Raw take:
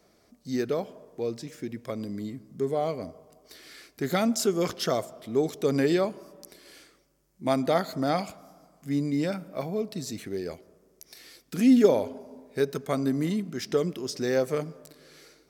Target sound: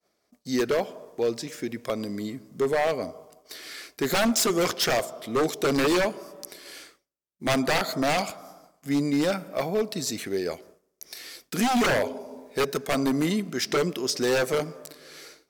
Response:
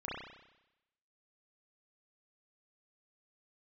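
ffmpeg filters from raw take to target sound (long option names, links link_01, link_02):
-af "lowshelf=frequency=260:gain=-11.5,aeval=exprs='0.0531*(abs(mod(val(0)/0.0531+3,4)-2)-1)':channel_layout=same,agate=range=-33dB:threshold=-54dB:ratio=3:detection=peak,volume=8.5dB"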